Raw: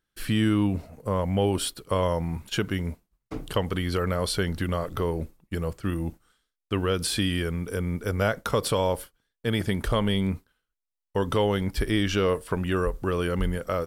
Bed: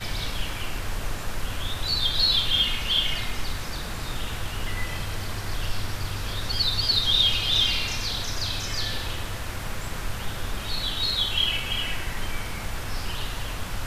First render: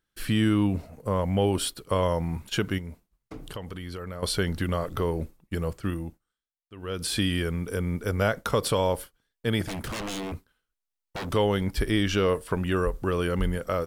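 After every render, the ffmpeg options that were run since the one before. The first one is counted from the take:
ffmpeg -i in.wav -filter_complex "[0:a]asettb=1/sr,asplit=3[link_01][link_02][link_03];[link_01]atrim=end=2.784[link_04];[link_02]atrim=start=2.78:end=4.23,asetpts=PTS-STARTPTS,afade=type=in:duration=0.004:curve=qsin,afade=type=out:start_time=1.446:duration=0.004:curve=qsin,acompressor=threshold=-38dB:ratio=2.5:attack=3.2:release=140:knee=1:detection=peak[link_05];[link_03]atrim=start=4.226[link_06];[link_04][link_05]acrossfade=duration=0.004:curve1=hsin:curve2=qsin[link_07];[link_07][link_06]acrossfade=duration=0.004:curve1=qsin:curve2=hsin,asettb=1/sr,asplit=3[link_08][link_09][link_10];[link_08]atrim=end=9.644[link_11];[link_09]atrim=start=9.64:end=11.33,asetpts=PTS-STARTPTS,afade=type=in:duration=0.004:curve=qsin,afade=type=out:start_time=1.686:duration=0.004:curve=qsin,aeval=exprs='0.0398*(abs(mod(val(0)/0.0398+3,4)-2)-1)':channel_layout=same[link_12];[link_10]atrim=start=11.326[link_13];[link_11][link_12]acrossfade=duration=0.004:curve1=hsin:curve2=qsin[link_14];[link_14][link_13]acrossfade=duration=0.004:curve1=qsin:curve2=hsin,asplit=3[link_15][link_16][link_17];[link_15]atrim=end=6.25,asetpts=PTS-STARTPTS,afade=type=out:start_time=5.83:duration=0.42:silence=0.105925[link_18];[link_16]atrim=start=6.25:end=6.76,asetpts=PTS-STARTPTS,volume=-19.5dB[link_19];[link_17]atrim=start=6.76,asetpts=PTS-STARTPTS,afade=type=in:duration=0.42:silence=0.105925[link_20];[link_18][link_19][link_20]concat=n=3:v=0:a=1" out.wav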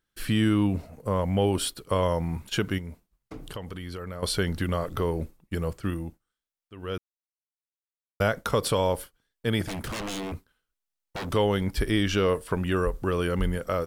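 ffmpeg -i in.wav -filter_complex "[0:a]asplit=3[link_01][link_02][link_03];[link_01]atrim=end=6.98,asetpts=PTS-STARTPTS,afade=type=out:start_time=6.976:duration=0.004:curve=hsin[link_04];[link_02]atrim=start=6.98:end=8.2,asetpts=PTS-STARTPTS,volume=0[link_05];[link_03]atrim=start=8.2,asetpts=PTS-STARTPTS,afade=type=in:duration=0.004:curve=hsin[link_06];[link_04][link_05][link_06]concat=n=3:v=0:a=1" out.wav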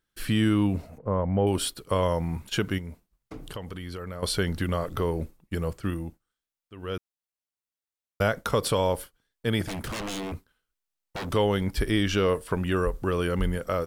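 ffmpeg -i in.wav -filter_complex "[0:a]asettb=1/sr,asplit=3[link_01][link_02][link_03];[link_01]atrim=end=0.984[link_04];[link_02]atrim=start=0.98:end=1.47,asetpts=PTS-STARTPTS,afade=type=in:duration=0.004:curve=qsin,afade=type=out:start_time=0.486:duration=0.004:curve=qsin,lowpass=1400[link_05];[link_03]atrim=start=1.466[link_06];[link_04][link_05]acrossfade=duration=0.004:curve1=hsin:curve2=qsin[link_07];[link_07][link_06]acrossfade=duration=0.004:curve1=qsin:curve2=hsin" out.wav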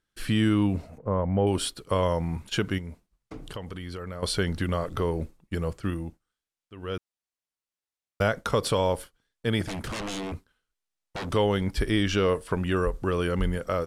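ffmpeg -i in.wav -af "lowpass=10000" out.wav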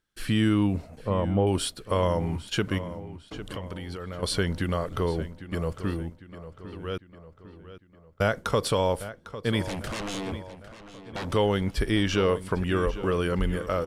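ffmpeg -i in.wav -filter_complex "[0:a]asplit=2[link_01][link_02];[link_02]adelay=802,lowpass=frequency=4700:poles=1,volume=-13.5dB,asplit=2[link_03][link_04];[link_04]adelay=802,lowpass=frequency=4700:poles=1,volume=0.49,asplit=2[link_05][link_06];[link_06]adelay=802,lowpass=frequency=4700:poles=1,volume=0.49,asplit=2[link_07][link_08];[link_08]adelay=802,lowpass=frequency=4700:poles=1,volume=0.49,asplit=2[link_09][link_10];[link_10]adelay=802,lowpass=frequency=4700:poles=1,volume=0.49[link_11];[link_01][link_03][link_05][link_07][link_09][link_11]amix=inputs=6:normalize=0" out.wav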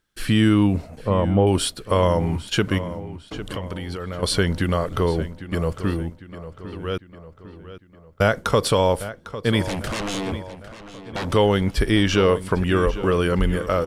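ffmpeg -i in.wav -af "volume=6dB" out.wav

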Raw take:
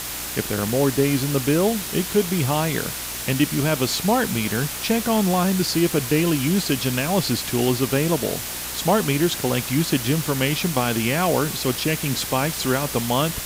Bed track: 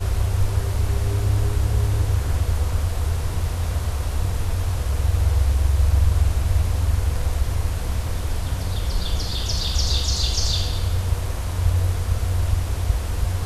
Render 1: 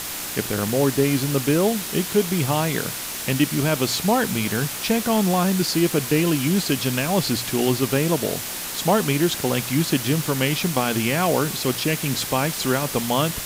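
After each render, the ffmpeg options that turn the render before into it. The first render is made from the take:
ffmpeg -i in.wav -af "bandreject=frequency=60:width_type=h:width=4,bandreject=frequency=120:width_type=h:width=4" out.wav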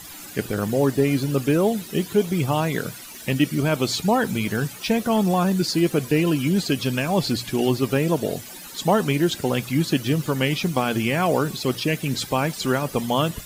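ffmpeg -i in.wav -af "afftdn=noise_reduction=15:noise_floor=-31" out.wav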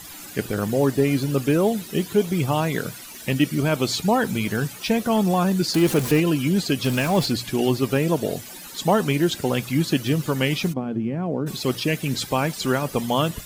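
ffmpeg -i in.wav -filter_complex "[0:a]asettb=1/sr,asplit=3[link_01][link_02][link_03];[link_01]atrim=end=5.744[link_04];[link_02]atrim=start=5.74:end=6.2,asetpts=PTS-STARTPTS,afade=type=in:duration=0.004:curve=qsin,afade=type=out:start_time=0.456:duration=0.004:curve=qsin,aeval=exprs='val(0)+0.5*0.0562*sgn(val(0))':channel_layout=same[link_05];[link_03]atrim=start=6.196[link_06];[link_04][link_05]acrossfade=duration=0.004:curve1=hsin:curve2=qsin[link_07];[link_07][link_06]acrossfade=duration=0.004:curve1=qsin:curve2=hsin,asettb=1/sr,asplit=3[link_08][link_09][link_10];[link_08]atrim=end=6.844[link_11];[link_09]atrim=start=6.84:end=7.26,asetpts=PTS-STARTPTS,afade=type=in:duration=0.004:curve=qsin,afade=type=out:start_time=0.416:duration=0.004:curve=qsin,aeval=exprs='val(0)+0.5*0.0398*sgn(val(0))':channel_layout=same[link_12];[link_10]atrim=start=7.256[link_13];[link_11][link_12]acrossfade=duration=0.004:curve1=hsin:curve2=qsin[link_14];[link_14][link_13]acrossfade=duration=0.004:curve1=qsin:curve2=hsin,asplit=3[link_15][link_16][link_17];[link_15]afade=type=out:start_time=10.72:duration=0.02[link_18];[link_16]bandpass=frequency=210:width_type=q:width=1,afade=type=in:start_time=10.72:duration=0.02,afade=type=out:start_time=11.46:duration=0.02[link_19];[link_17]afade=type=in:start_time=11.46:duration=0.02[link_20];[link_18][link_19][link_20]amix=inputs=3:normalize=0" out.wav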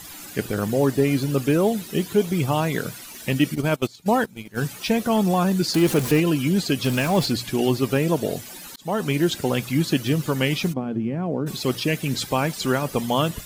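ffmpeg -i in.wav -filter_complex "[0:a]asplit=3[link_01][link_02][link_03];[link_01]afade=type=out:start_time=3.54:duration=0.02[link_04];[link_02]agate=range=-22dB:threshold=-22dB:ratio=16:release=100:detection=peak,afade=type=in:start_time=3.54:duration=0.02,afade=type=out:start_time=4.56:duration=0.02[link_05];[link_03]afade=type=in:start_time=4.56:duration=0.02[link_06];[link_04][link_05][link_06]amix=inputs=3:normalize=0,asplit=2[link_07][link_08];[link_07]atrim=end=8.76,asetpts=PTS-STARTPTS,afade=type=out:start_time=8.756:duration=0.004:curve=hsin[link_09];[link_08]atrim=start=8.76,asetpts=PTS-STARTPTS,afade=type=in:duration=0.52:curve=qsin[link_10];[link_09][link_10]concat=n=2:v=0:a=1" out.wav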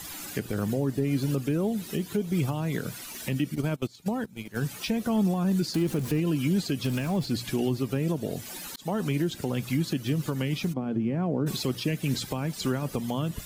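ffmpeg -i in.wav -filter_complex "[0:a]acrossover=split=310[link_01][link_02];[link_02]acompressor=threshold=-29dB:ratio=6[link_03];[link_01][link_03]amix=inputs=2:normalize=0,alimiter=limit=-17.5dB:level=0:latency=1:release=444" out.wav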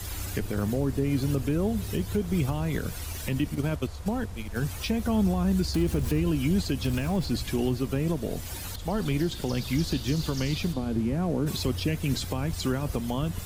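ffmpeg -i in.wav -i bed.wav -filter_complex "[1:a]volume=-15dB[link_01];[0:a][link_01]amix=inputs=2:normalize=0" out.wav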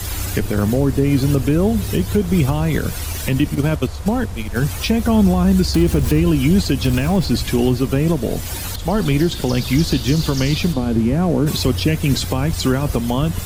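ffmpeg -i in.wav -af "volume=10.5dB" out.wav

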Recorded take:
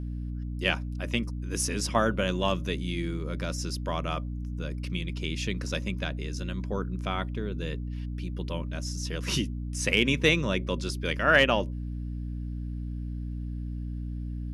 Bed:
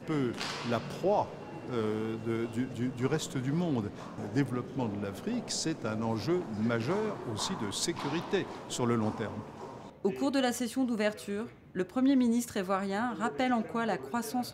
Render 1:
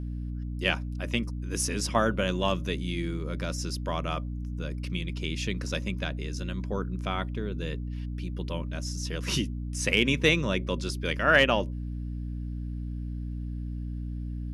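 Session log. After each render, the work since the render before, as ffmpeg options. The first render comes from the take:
ffmpeg -i in.wav -af anull out.wav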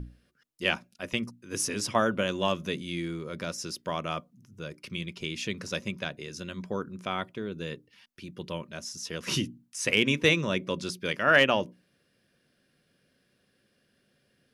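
ffmpeg -i in.wav -af "bandreject=frequency=60:width_type=h:width=6,bandreject=frequency=120:width_type=h:width=6,bandreject=frequency=180:width_type=h:width=6,bandreject=frequency=240:width_type=h:width=6,bandreject=frequency=300:width_type=h:width=6" out.wav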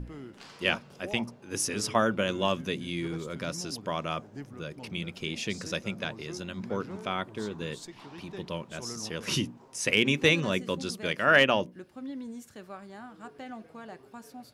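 ffmpeg -i in.wav -i bed.wav -filter_complex "[1:a]volume=-13dB[link_01];[0:a][link_01]amix=inputs=2:normalize=0" out.wav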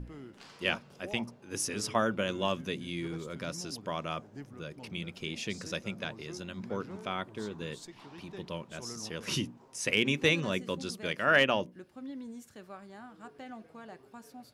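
ffmpeg -i in.wav -af "volume=-3.5dB" out.wav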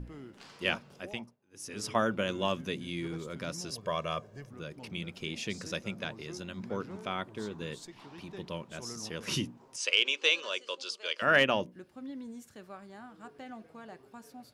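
ffmpeg -i in.wav -filter_complex "[0:a]asettb=1/sr,asplit=3[link_01][link_02][link_03];[link_01]atrim=end=3.684[link_04];[link_02]atrim=start=3.68:end=4.5,asetpts=PTS-STARTPTS,afade=type=in:duration=0.004:curve=qsin,afade=type=out:start_time=0.816:duration=0.004:curve=qsin,aecho=1:1:1.8:0.65,atrim=end_sample=36162[link_05];[link_03]atrim=start=4.496[link_06];[link_04][link_05]acrossfade=duration=0.004:curve1=hsin:curve2=qsin[link_07];[link_07][link_06]acrossfade=duration=0.004:curve1=qsin:curve2=hsin,asettb=1/sr,asplit=3[link_08][link_09][link_10];[link_08]atrim=end=9.764[link_11];[link_09]atrim=start=9.76:end=11.22,asetpts=PTS-STARTPTS,afade=type=in:duration=0.004:curve=qsin,afade=type=out:start_time=1.456:duration=0.004:curve=qsin,highpass=frequency=500:width=0.5412,highpass=frequency=500:width=1.3066,equalizer=frequency=740:width_type=q:width=4:gain=-10,equalizer=frequency=1900:width_type=q:width=4:gain=-7,equalizer=frequency=3000:width_type=q:width=4:gain=7,equalizer=frequency=4700:width_type=q:width=4:gain=6,lowpass=frequency=8300:width=0.5412,lowpass=frequency=8300:width=1.3066[link_12];[link_10]atrim=start=11.216[link_13];[link_11][link_12]acrossfade=duration=0.004:curve1=hsin:curve2=qsin[link_14];[link_14][link_13]acrossfade=duration=0.004:curve1=qsin:curve2=hsin,asplit=3[link_15][link_16][link_17];[link_15]atrim=end=1.36,asetpts=PTS-STARTPTS,afade=type=out:start_time=0.93:duration=0.43:silence=0.0794328[link_18];[link_16]atrim=start=1.36:end=1.53,asetpts=PTS-STARTPTS,volume=-22dB[link_19];[link_17]atrim=start=1.53,asetpts=PTS-STARTPTS,afade=type=in:duration=0.43:silence=0.0794328[link_20];[link_18][link_19][link_20]concat=n=3:v=0:a=1" out.wav

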